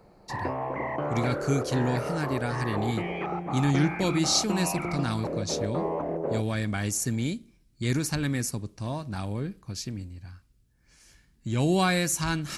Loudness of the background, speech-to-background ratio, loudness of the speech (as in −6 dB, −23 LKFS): −32.5 LKFS, 3.5 dB, −29.0 LKFS